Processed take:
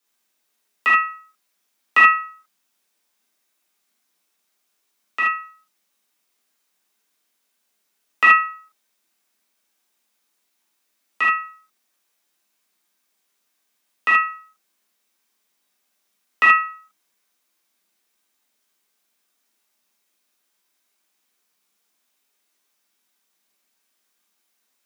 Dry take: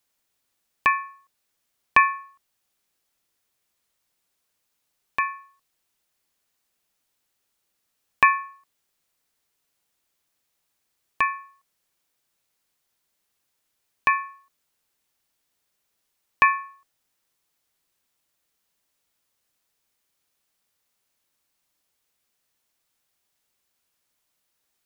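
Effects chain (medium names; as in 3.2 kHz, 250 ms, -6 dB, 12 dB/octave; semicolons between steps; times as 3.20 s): frequency shift +180 Hz; gated-style reverb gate 100 ms flat, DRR -6.5 dB; trim -3 dB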